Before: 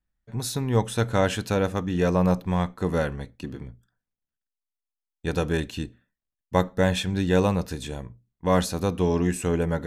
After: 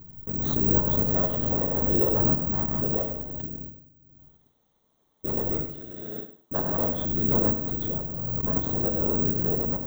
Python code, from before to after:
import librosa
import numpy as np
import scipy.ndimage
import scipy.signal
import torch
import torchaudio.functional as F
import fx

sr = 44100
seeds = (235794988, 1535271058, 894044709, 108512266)

y = fx.lower_of_two(x, sr, delay_ms=0.31)
y = fx.comb(y, sr, ms=2.3, depth=0.73, at=(1.71, 2.25))
y = fx.highpass(y, sr, hz=fx.line((5.67, 410.0), (6.95, 140.0)), slope=12, at=(5.67, 6.95), fade=0.02)
y = fx.over_compress(y, sr, threshold_db=-30.0, ratio=-0.5, at=(7.53, 8.55), fade=0.02)
y = fx.whisperise(y, sr, seeds[0])
y = scipy.signal.lfilter(np.full(17, 1.0 / 17), 1.0, y)
y = fx.echo_feedback(y, sr, ms=102, feedback_pct=26, wet_db=-10.5)
y = fx.rev_gated(y, sr, seeds[1], gate_ms=310, shape='falling', drr_db=8.0)
y = (np.kron(y[::2], np.eye(2)[0]) * 2)[:len(y)]
y = fx.pre_swell(y, sr, db_per_s=23.0)
y = y * librosa.db_to_amplitude(-6.0)